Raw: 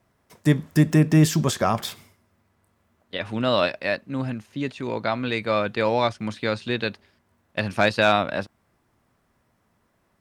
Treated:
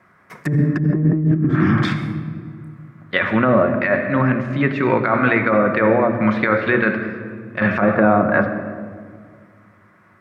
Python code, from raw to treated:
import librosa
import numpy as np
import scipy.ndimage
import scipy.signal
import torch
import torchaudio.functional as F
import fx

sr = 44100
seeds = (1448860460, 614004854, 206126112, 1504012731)

y = fx.spec_repair(x, sr, seeds[0], start_s=1.37, length_s=0.4, low_hz=370.0, high_hz=3000.0, source='both')
y = fx.env_lowpass_down(y, sr, base_hz=490.0, full_db=-17.5)
y = scipy.signal.sosfilt(scipy.signal.butter(2, 99.0, 'highpass', fs=sr, output='sos'), y)
y = fx.band_shelf(y, sr, hz=1600.0, db=11.0, octaves=1.3)
y = fx.hum_notches(y, sr, base_hz=60, count=9)
y = fx.room_shoebox(y, sr, seeds[1], volume_m3=2700.0, walls='mixed', distance_m=0.97)
y = fx.over_compress(y, sr, threshold_db=-23.0, ratio=-1.0)
y = fx.high_shelf(y, sr, hz=2700.0, db=-11.0)
y = fx.echo_bbd(y, sr, ms=194, stages=1024, feedback_pct=49, wet_db=-12.5)
y = y * librosa.db_to_amplitude(8.5)